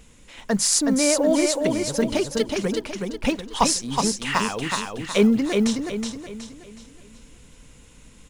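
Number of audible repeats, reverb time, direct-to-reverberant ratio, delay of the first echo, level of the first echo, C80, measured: 4, none, none, 0.37 s, -4.0 dB, none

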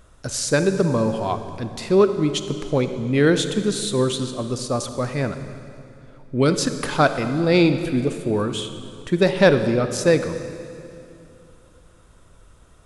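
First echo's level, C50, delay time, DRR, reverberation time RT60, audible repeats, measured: none, 9.5 dB, none, 9.0 dB, 2.7 s, none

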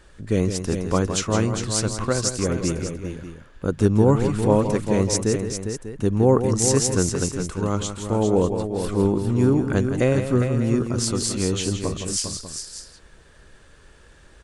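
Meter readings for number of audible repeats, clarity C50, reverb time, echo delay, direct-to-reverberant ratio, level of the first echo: 3, none, none, 0.166 s, none, -9.0 dB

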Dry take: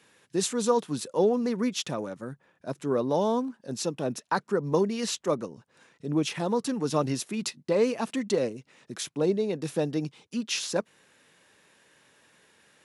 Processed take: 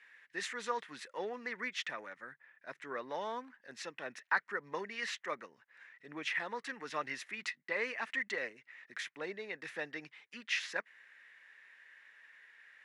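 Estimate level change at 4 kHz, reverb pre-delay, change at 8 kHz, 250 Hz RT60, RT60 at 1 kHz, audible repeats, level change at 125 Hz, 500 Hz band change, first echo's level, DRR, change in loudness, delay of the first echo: -8.5 dB, none, -16.0 dB, none, none, none, -26.5 dB, -16.5 dB, none, none, -11.0 dB, none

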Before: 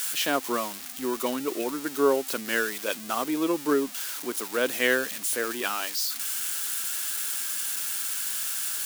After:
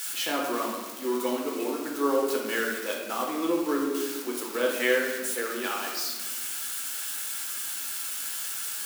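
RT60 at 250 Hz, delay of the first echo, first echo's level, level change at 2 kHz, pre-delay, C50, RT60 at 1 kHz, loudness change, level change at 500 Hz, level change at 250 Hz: 2.2 s, none, none, -1.5 dB, 6 ms, 2.5 dB, 1.3 s, -1.5 dB, -0.5 dB, -0.5 dB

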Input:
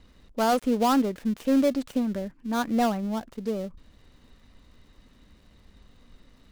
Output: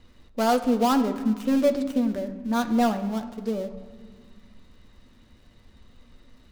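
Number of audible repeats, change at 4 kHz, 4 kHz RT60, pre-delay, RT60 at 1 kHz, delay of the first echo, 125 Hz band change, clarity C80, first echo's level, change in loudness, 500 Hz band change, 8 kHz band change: none, +1.0 dB, 1.1 s, 9 ms, 1.9 s, none, n/a, 13.5 dB, none, +1.5 dB, +2.0 dB, +0.5 dB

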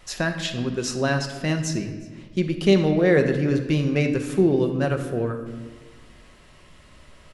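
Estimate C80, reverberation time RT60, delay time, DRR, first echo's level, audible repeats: 10.0 dB, 1.4 s, 0.363 s, 5.0 dB, -23.5 dB, 1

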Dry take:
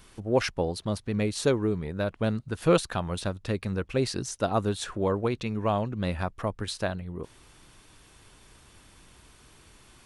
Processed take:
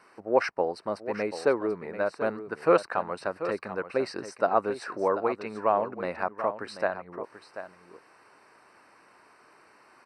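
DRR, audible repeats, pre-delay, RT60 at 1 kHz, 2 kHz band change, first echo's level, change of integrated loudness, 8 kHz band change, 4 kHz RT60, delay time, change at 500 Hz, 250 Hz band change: none, 1, none, none, +2.5 dB, -11.5 dB, 0.0 dB, under -10 dB, none, 0.737 s, +2.0 dB, -5.5 dB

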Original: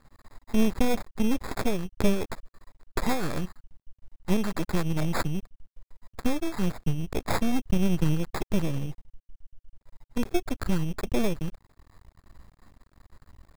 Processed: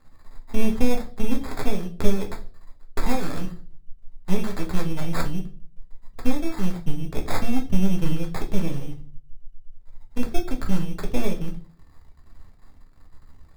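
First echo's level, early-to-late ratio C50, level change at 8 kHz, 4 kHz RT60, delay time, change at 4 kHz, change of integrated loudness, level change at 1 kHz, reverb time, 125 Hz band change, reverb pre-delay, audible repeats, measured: none, 13.5 dB, -0.5 dB, 0.35 s, none, 0.0 dB, +1.0 dB, 0.0 dB, 0.40 s, +1.0 dB, 4 ms, none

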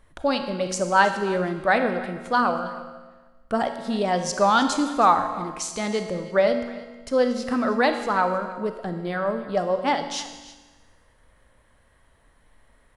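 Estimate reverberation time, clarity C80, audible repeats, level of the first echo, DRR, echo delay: 1.3 s, 9.0 dB, 1, -18.0 dB, 6.5 dB, 0.318 s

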